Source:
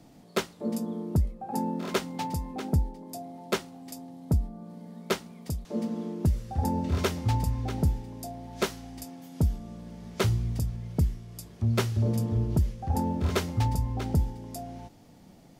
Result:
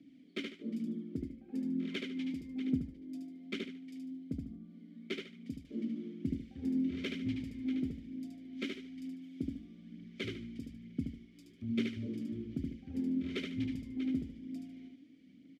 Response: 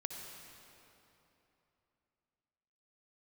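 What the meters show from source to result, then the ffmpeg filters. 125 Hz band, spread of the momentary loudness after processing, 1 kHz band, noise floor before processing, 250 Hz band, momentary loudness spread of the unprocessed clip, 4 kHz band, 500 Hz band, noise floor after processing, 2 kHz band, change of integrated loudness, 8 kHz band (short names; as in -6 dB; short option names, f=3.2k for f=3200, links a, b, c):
-18.5 dB, 11 LU, under -25 dB, -53 dBFS, -3.0 dB, 15 LU, -8.0 dB, -13.5 dB, -59 dBFS, -7.5 dB, -9.5 dB, under -20 dB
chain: -filter_complex "[0:a]asplit=3[a][b][c];[a]bandpass=f=270:t=q:w=8,volume=0dB[d];[b]bandpass=f=2.29k:t=q:w=8,volume=-6dB[e];[c]bandpass=f=3.01k:t=q:w=8,volume=-9dB[f];[d][e][f]amix=inputs=3:normalize=0,aecho=1:1:74|148|222|296:0.631|0.189|0.0568|0.017,aphaser=in_gain=1:out_gain=1:delay=3.8:decay=0.35:speed=1.1:type=triangular,volume=2.5dB"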